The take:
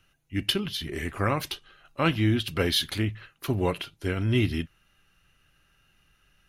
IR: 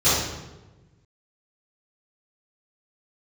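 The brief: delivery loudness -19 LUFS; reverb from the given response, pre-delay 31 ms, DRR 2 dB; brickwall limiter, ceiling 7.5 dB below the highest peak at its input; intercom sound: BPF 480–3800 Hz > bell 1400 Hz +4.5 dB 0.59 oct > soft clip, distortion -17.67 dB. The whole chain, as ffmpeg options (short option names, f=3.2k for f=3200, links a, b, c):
-filter_complex "[0:a]alimiter=limit=-18dB:level=0:latency=1,asplit=2[a][b];[1:a]atrim=start_sample=2205,adelay=31[c];[b][c]afir=irnorm=-1:irlink=0,volume=-21.5dB[d];[a][d]amix=inputs=2:normalize=0,highpass=480,lowpass=3.8k,equalizer=f=1.4k:t=o:w=0.59:g=4.5,asoftclip=threshold=-21.5dB,volume=14.5dB"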